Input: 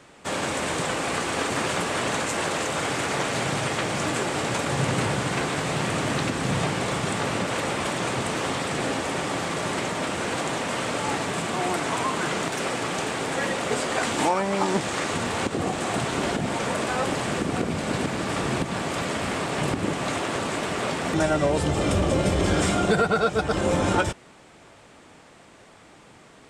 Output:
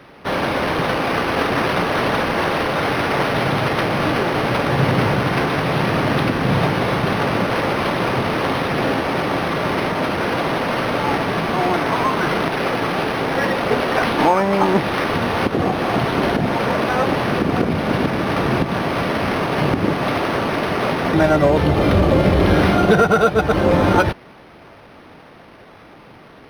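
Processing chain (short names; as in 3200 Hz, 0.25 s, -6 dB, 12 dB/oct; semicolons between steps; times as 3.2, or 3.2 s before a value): decimation joined by straight lines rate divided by 6×; gain +8 dB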